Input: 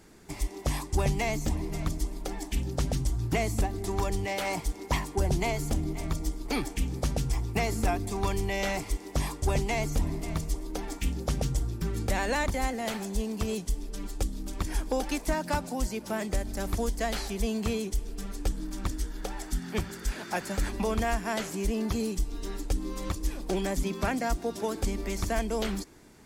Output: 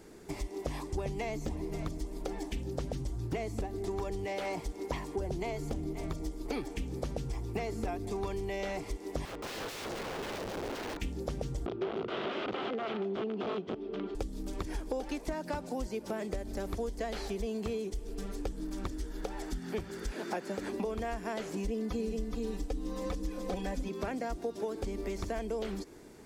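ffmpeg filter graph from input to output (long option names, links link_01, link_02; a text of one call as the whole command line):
ffmpeg -i in.wav -filter_complex "[0:a]asettb=1/sr,asplit=3[link_01][link_02][link_03];[link_01]atrim=end=9.254[link_04];[link_02]atrim=start=9.25:end=11,asetpts=PTS-STARTPTS,afade=type=in:duration=0.004:curve=qsin,afade=type=out:start_time=1.746:duration=0.004:curve=qsin,lowpass=3500,aeval=exprs='(mod(50.1*val(0)+1,2)-1)/50.1':channel_layout=same[link_05];[link_03]atrim=start=10.996[link_06];[link_04][link_05]acrossfade=duration=0.004:curve1=hsin:curve2=qsin[link_07];[link_07][link_06]acrossfade=duration=0.004:curve1=qsin:curve2=hsin,asettb=1/sr,asplit=3[link_08][link_09][link_10];[link_08]atrim=end=11.664[link_11];[link_09]atrim=start=11.66:end=14.15,asetpts=PTS-STARTPTS,afade=type=in:duration=0.004:curve=qsin,afade=type=out:start_time=2.486:duration=0.004:curve=qsin,aeval=exprs='(mod(21.1*val(0)+1,2)-1)/21.1':channel_layout=same,highpass=120,equalizer=frequency=200:width_type=q:width=4:gain=5,equalizer=frequency=380:width_type=q:width=4:gain=10,equalizer=frequency=690:width_type=q:width=4:gain=5,equalizer=frequency=1300:width_type=q:width=4:gain=8,equalizer=frequency=1800:width_type=q:width=4:gain=-3,equalizer=frequency=3200:width_type=q:width=4:gain=5,lowpass=frequency=3400:width=0.5412,lowpass=frequency=3400:width=1.3066[link_12];[link_10]atrim=start=14.146[link_13];[link_11][link_12]acrossfade=duration=0.004:curve1=hsin:curve2=qsin[link_14];[link_14][link_13]acrossfade=duration=0.004:curve1=qsin:curve2=hsin,asettb=1/sr,asplit=3[link_15][link_16][link_17];[link_15]atrim=end=20.134[link_18];[link_16]atrim=start=20.13:end=20.85,asetpts=PTS-STARTPTS,afade=type=in:duration=0.004:curve=qsin,afade=type=out:start_time=0.716:duration=0.004:curve=qsin,highpass=220,lowshelf=frequency=340:gain=7.5[link_19];[link_17]atrim=start=20.846[link_20];[link_18][link_19]acrossfade=duration=0.004:curve1=hsin:curve2=qsin[link_21];[link_21][link_20]acrossfade=duration=0.004:curve1=qsin:curve2=hsin,asettb=1/sr,asplit=3[link_22][link_23][link_24];[link_22]atrim=end=21.564[link_25];[link_23]atrim=start=21.56:end=23.89,asetpts=PTS-STARTPTS,afade=type=in:duration=0.004:curve=qsin,afade=type=out:start_time=2.326:duration=0.004:curve=qsin,aecho=1:1:4:0.82,atrim=end_sample=102753,aecho=1:1:423:0.631,atrim=end_sample=102753[link_26];[link_24]atrim=start=23.886[link_27];[link_25][link_26]acrossfade=duration=0.004:curve1=hsin:curve2=qsin[link_28];[link_28][link_27]acrossfade=duration=0.004:curve1=qsin:curve2=hsin,acrossover=split=5800[link_29][link_30];[link_30]acompressor=threshold=-49dB:ratio=4:attack=1:release=60[link_31];[link_29][link_31]amix=inputs=2:normalize=0,equalizer=frequency=430:width=1.2:gain=8,acompressor=threshold=-32dB:ratio=4,volume=-1.5dB" out.wav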